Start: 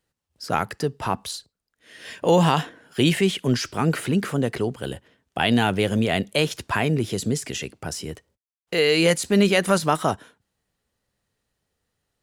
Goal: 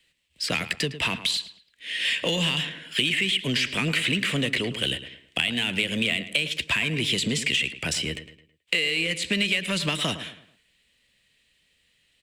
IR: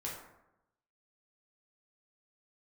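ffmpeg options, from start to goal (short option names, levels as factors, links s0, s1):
-filter_complex "[0:a]acrossover=split=310|3000|6100[s0][s1][s2][s3];[s0]acompressor=threshold=0.0794:ratio=4[s4];[s1]acompressor=threshold=0.0631:ratio=4[s5];[s2]acompressor=threshold=0.0112:ratio=4[s6];[s3]acompressor=threshold=0.00891:ratio=4[s7];[s4][s5][s6][s7]amix=inputs=4:normalize=0,acrossover=split=300|3200[s8][s9][s10];[s9]aexciter=amount=15.1:drive=4.4:freq=2100[s11];[s8][s11][s10]amix=inputs=3:normalize=0,acompressor=threshold=0.0708:ratio=6,asplit=2[s12][s13];[s13]volume=21.1,asoftclip=hard,volume=0.0473,volume=0.398[s14];[s12][s14]amix=inputs=2:normalize=0,equalizer=f=100:t=o:w=0.33:g=-9,equalizer=f=400:t=o:w=0.33:g=-4,equalizer=f=800:t=o:w=0.33:g=-9,equalizer=f=8000:t=o:w=0.33:g=9,asplit=2[s15][s16];[s16]adelay=108,lowpass=f=3000:p=1,volume=0.251,asplit=2[s17][s18];[s18]adelay=108,lowpass=f=3000:p=1,volume=0.39,asplit=2[s19][s20];[s20]adelay=108,lowpass=f=3000:p=1,volume=0.39,asplit=2[s21][s22];[s22]adelay=108,lowpass=f=3000:p=1,volume=0.39[s23];[s15][s17][s19][s21][s23]amix=inputs=5:normalize=0,asplit=3[s24][s25][s26];[s24]afade=t=out:st=7.97:d=0.02[s27];[s25]adynamicequalizer=threshold=0.0158:dfrequency=2000:dqfactor=0.7:tfrequency=2000:tqfactor=0.7:attack=5:release=100:ratio=0.375:range=3:mode=cutabove:tftype=highshelf,afade=t=in:st=7.97:d=0.02,afade=t=out:st=9.09:d=0.02[s28];[s26]afade=t=in:st=9.09:d=0.02[s29];[s27][s28][s29]amix=inputs=3:normalize=0"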